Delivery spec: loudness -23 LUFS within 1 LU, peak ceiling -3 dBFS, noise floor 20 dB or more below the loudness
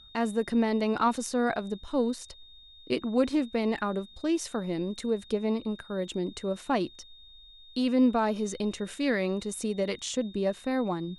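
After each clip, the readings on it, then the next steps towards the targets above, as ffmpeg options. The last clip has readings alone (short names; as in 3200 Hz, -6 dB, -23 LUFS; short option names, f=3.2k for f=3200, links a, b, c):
steady tone 3700 Hz; tone level -51 dBFS; loudness -29.5 LUFS; peak -12.5 dBFS; loudness target -23.0 LUFS
-> -af "bandreject=f=3.7k:w=30"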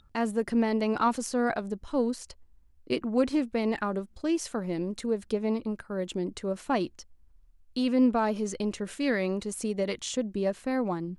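steady tone none; loudness -29.5 LUFS; peak -12.5 dBFS; loudness target -23.0 LUFS
-> -af "volume=6.5dB"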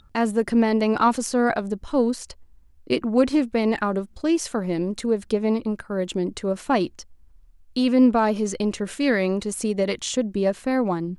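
loudness -23.0 LUFS; peak -6.0 dBFS; noise floor -53 dBFS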